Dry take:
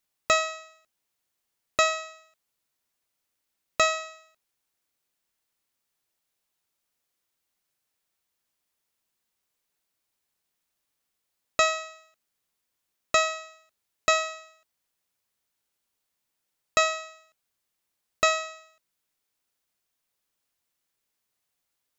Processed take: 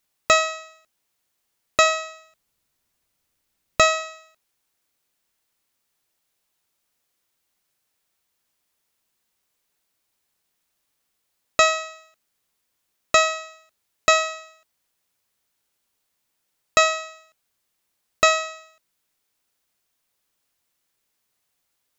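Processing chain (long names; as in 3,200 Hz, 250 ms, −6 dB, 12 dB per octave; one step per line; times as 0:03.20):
0:01.86–0:04.02: low-shelf EQ 190 Hz +10 dB
level +5.5 dB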